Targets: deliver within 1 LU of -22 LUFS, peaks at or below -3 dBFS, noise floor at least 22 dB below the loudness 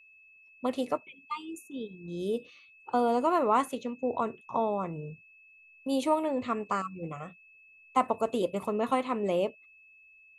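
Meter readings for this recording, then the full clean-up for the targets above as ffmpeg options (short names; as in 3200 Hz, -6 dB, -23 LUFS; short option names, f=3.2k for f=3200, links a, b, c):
steady tone 2600 Hz; tone level -55 dBFS; loudness -31.0 LUFS; peak -13.0 dBFS; loudness target -22.0 LUFS
-> -af "bandreject=f=2.6k:w=30"
-af "volume=9dB"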